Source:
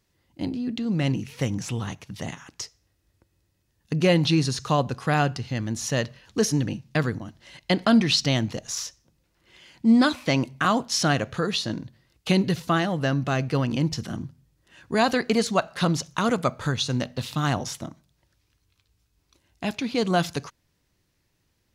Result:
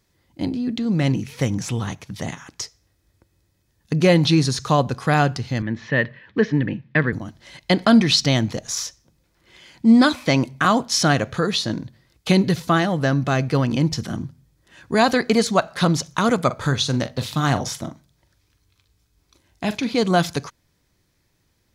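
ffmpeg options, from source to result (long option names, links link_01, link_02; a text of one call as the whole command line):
ffmpeg -i in.wav -filter_complex "[0:a]asettb=1/sr,asplit=3[link_01][link_02][link_03];[link_01]atrim=end=5.624[link_04];[link_02]atrim=start=5.62:end=7.13,asetpts=PTS-STARTPTS,afade=type=in:duration=0.004:curve=qsin,afade=type=out:start_time=1.506:duration=0.004:curve=qsin,highpass=110,equalizer=frequency=730:width_type=q:width=4:gain=-7,equalizer=frequency=1300:width_type=q:width=4:gain=-4,equalizer=frequency=1800:width_type=q:width=4:gain=9,lowpass=frequency=3000:width=0.5412,lowpass=frequency=3000:width=1.3066[link_05];[link_03]atrim=start=7.126[link_06];[link_04][link_05]acrossfade=duration=0.004:curve1=hsin:curve2=qsin[link_07];[link_07][link_06]acrossfade=duration=0.004:curve1=qsin:curve2=hsin,asettb=1/sr,asplit=3[link_08][link_09][link_10];[link_08]atrim=end=16.464[link_11];[link_09]atrim=start=16.46:end=19.95,asetpts=PTS-STARTPTS,afade=type=in:duration=0.004:curve=qsin,afade=type=out:start_time=3.486:duration=0.004:curve=qsin,asplit=2[link_12][link_13];[link_13]adelay=43,volume=-12dB[link_14];[link_12][link_14]amix=inputs=2:normalize=0,atrim=end_sample=153909[link_15];[link_10]atrim=start=19.946[link_16];[link_11][link_15]acrossfade=duration=0.004:curve1=hsin:curve2=qsin[link_17];[link_17][link_16]acrossfade=duration=0.004:curve1=qsin:curve2=hsin,bandreject=frequency=2800:width=13,volume=4.5dB" out.wav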